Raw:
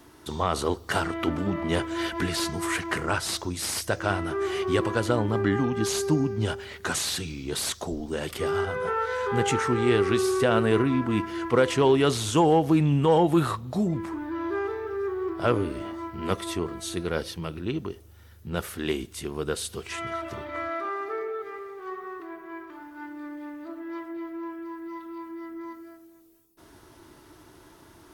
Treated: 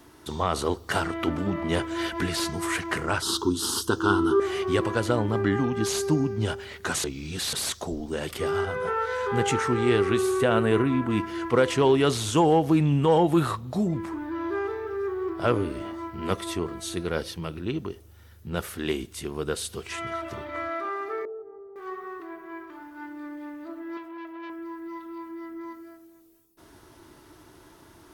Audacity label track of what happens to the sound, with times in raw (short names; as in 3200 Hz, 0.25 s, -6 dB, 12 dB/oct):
3.220000	4.400000	EQ curve 170 Hz 0 dB, 240 Hz +9 dB, 420 Hz +10 dB, 600 Hz -19 dB, 910 Hz +6 dB, 1400 Hz +6 dB, 2200 Hz -27 dB, 3100 Hz +6 dB, 5700 Hz +1 dB
7.040000	7.530000	reverse
10.050000	11.100000	bell 5100 Hz -8.5 dB 0.44 oct
21.250000	21.760000	ladder low-pass 850 Hz, resonance 25%
23.970000	24.500000	core saturation saturates under 1200 Hz